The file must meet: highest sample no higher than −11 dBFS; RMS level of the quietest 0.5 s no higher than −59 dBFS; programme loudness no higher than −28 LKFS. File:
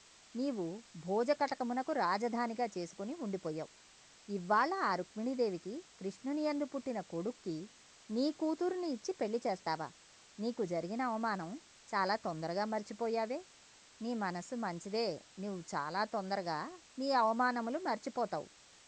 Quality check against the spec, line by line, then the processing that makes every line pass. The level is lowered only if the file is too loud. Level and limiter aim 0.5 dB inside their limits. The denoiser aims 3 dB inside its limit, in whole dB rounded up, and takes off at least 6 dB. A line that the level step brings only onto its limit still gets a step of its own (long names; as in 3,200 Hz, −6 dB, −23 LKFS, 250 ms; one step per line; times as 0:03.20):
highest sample −18.5 dBFS: in spec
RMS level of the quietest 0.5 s −61 dBFS: in spec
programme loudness −37.0 LKFS: in spec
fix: no processing needed